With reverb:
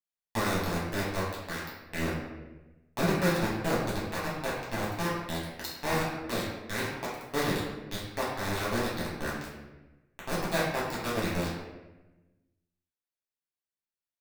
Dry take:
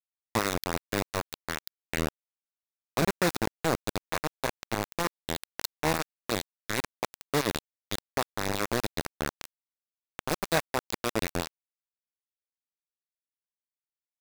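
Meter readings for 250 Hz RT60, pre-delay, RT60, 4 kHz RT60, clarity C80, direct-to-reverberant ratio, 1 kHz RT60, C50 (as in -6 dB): 1.4 s, 4 ms, 1.1 s, 0.75 s, 4.0 dB, -8.0 dB, 0.95 s, 1.5 dB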